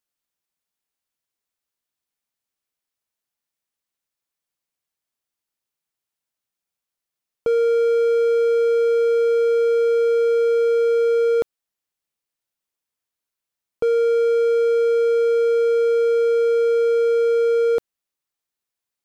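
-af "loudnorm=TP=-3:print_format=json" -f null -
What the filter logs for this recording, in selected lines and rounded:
"input_i" : "-18.4",
"input_tp" : "-12.5",
"input_lra" : "7.0",
"input_thresh" : "-28.4",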